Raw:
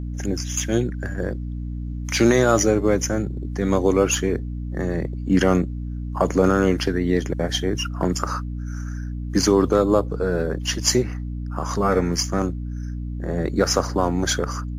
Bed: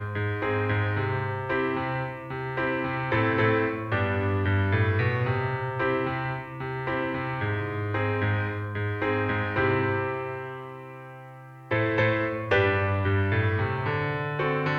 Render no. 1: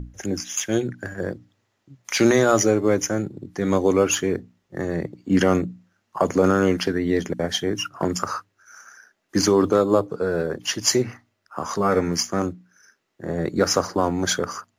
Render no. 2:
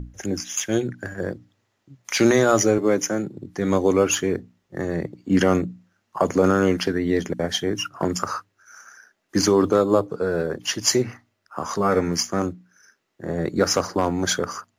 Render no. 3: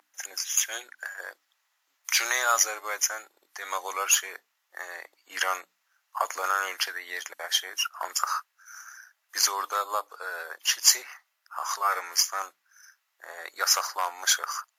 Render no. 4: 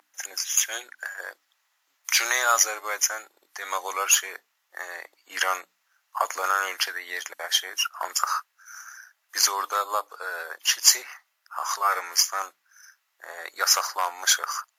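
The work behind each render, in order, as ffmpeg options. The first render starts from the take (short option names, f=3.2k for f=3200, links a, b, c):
-af "bandreject=f=60:t=h:w=6,bandreject=f=120:t=h:w=6,bandreject=f=180:t=h:w=6,bandreject=f=240:t=h:w=6,bandreject=f=300:t=h:w=6"
-filter_complex "[0:a]asettb=1/sr,asplit=3[a][b][c];[a]atrim=end=2.784[d];[b]atrim=start=2.78:end=3.37,asetpts=PTS-STARTPTS,afade=t=in:d=0.004:c=qsin,afade=t=out:st=0.586:d=0.004:c=qsin,highpass=f=130:w=0.5412,highpass=f=130:w=1.3066[e];[c]atrim=start=3.366[f];[d][e]acrossfade=d=0.004:c1=hsin:c2=qsin[g];[g][f]acrossfade=d=0.004:c1=qsin:c2=hsin,asettb=1/sr,asplit=3[h][i][j];[h]atrim=end=13.714[k];[i]atrim=start=13.71:end=14.12,asetpts=PTS-STARTPTS,afade=t=in:d=0.004:c=qsin,afade=t=out:st=0.406:d=0.004:c=qsin,volume=11dB,asoftclip=hard,volume=-11dB[l];[j]atrim=start=14.116[m];[k][l]acrossfade=d=0.004:c1=hsin:c2=qsin[n];[n][m]acrossfade=d=0.004:c1=qsin:c2=hsin"
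-af "highpass=f=890:w=0.5412,highpass=f=890:w=1.3066,equalizer=f=13k:t=o:w=0.64:g=12"
-af "volume=2.5dB,alimiter=limit=-2dB:level=0:latency=1"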